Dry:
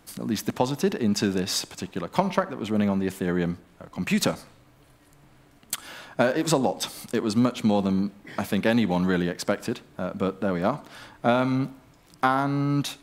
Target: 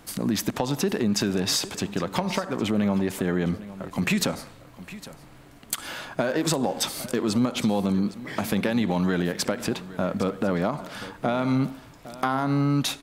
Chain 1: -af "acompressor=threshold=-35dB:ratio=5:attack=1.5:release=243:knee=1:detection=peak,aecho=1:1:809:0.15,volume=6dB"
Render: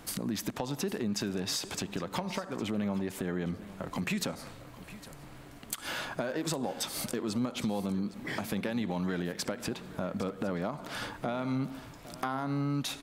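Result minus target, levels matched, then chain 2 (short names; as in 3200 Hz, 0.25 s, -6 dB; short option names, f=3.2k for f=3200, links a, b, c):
compressor: peak gain reduction +9 dB
-af "acompressor=threshold=-24dB:ratio=5:attack=1.5:release=243:knee=1:detection=peak,aecho=1:1:809:0.15,volume=6dB"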